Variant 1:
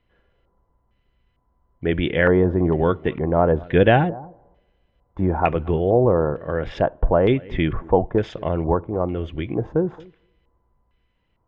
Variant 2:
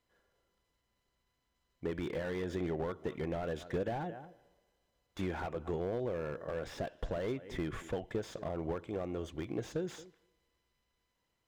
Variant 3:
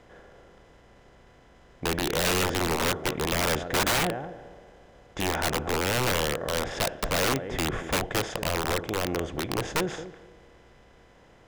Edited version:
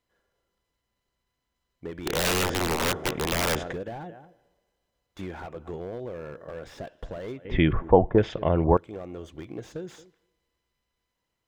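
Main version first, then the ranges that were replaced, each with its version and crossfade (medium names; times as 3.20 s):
2
2.06–3.73 s: from 3
7.45–8.77 s: from 1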